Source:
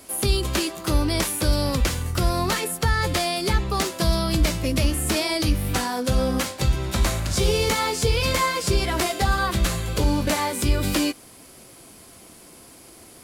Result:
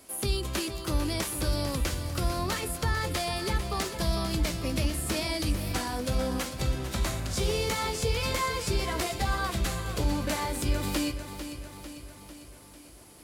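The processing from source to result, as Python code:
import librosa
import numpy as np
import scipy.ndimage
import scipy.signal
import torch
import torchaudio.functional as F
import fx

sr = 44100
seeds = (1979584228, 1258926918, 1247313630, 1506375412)

y = fx.echo_feedback(x, sr, ms=448, feedback_pct=57, wet_db=-10.5)
y = y * librosa.db_to_amplitude(-7.5)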